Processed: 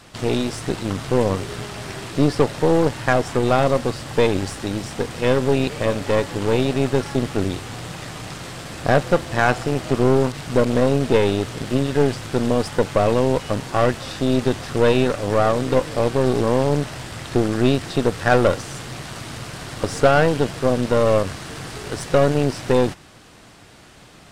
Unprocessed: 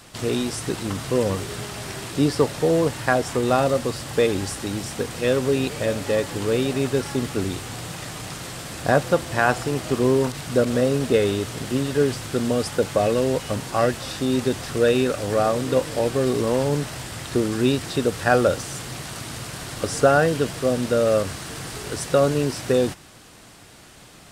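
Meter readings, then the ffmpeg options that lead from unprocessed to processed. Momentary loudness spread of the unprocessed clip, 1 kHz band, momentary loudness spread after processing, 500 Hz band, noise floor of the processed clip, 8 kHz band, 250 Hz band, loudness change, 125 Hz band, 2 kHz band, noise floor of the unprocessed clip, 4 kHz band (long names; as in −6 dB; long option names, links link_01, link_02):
12 LU, +3.0 dB, 14 LU, +2.0 dB, −46 dBFS, −3.5 dB, +2.5 dB, +2.5 dB, +4.0 dB, +1.5 dB, −47 dBFS, +0.5 dB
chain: -af "aeval=exprs='0.668*(cos(1*acos(clip(val(0)/0.668,-1,1)))-cos(1*PI/2))+0.0596*(cos(8*acos(clip(val(0)/0.668,-1,1)))-cos(8*PI/2))':channel_layout=same,highshelf=frequency=7700:gain=-10.5,volume=1.5dB"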